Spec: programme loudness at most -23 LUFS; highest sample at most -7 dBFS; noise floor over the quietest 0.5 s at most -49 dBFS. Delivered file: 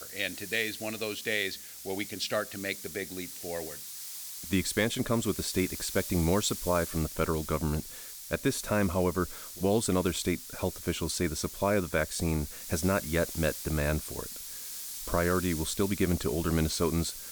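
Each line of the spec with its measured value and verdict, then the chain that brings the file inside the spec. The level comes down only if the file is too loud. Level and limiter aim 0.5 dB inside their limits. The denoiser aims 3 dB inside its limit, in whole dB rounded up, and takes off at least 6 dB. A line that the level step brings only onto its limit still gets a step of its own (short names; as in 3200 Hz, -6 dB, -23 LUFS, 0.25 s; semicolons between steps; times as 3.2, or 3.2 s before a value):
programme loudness -30.5 LUFS: OK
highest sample -14.0 dBFS: OK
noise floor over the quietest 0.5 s -44 dBFS: fail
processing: denoiser 8 dB, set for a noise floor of -44 dBFS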